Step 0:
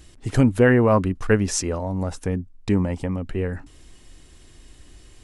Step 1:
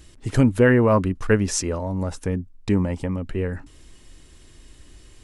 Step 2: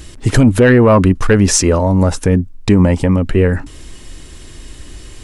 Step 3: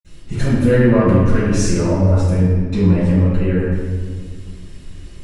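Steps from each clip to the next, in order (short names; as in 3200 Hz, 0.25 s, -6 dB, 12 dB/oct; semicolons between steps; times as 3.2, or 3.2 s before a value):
notch 740 Hz, Q 12
soft clip -9 dBFS, distortion -18 dB; maximiser +15 dB; gain -1 dB
reverb RT60 1.6 s, pre-delay 47 ms; gain -10 dB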